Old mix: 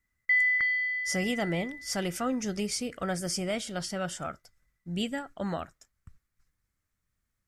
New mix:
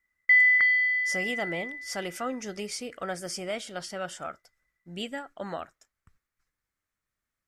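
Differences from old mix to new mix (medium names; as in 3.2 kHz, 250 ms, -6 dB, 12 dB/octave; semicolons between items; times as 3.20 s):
background +5.5 dB; master: add tone controls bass -11 dB, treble -4 dB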